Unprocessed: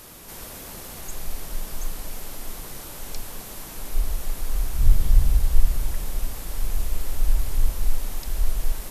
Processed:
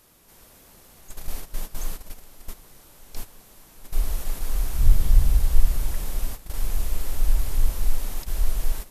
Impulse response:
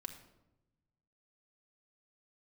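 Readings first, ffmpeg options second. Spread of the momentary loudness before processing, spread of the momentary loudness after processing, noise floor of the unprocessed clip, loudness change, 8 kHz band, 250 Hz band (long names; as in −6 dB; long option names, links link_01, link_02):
13 LU, 21 LU, −39 dBFS, +1.0 dB, −2.0 dB, −1.5 dB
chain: -af "agate=range=-13dB:threshold=-27dB:ratio=16:detection=peak"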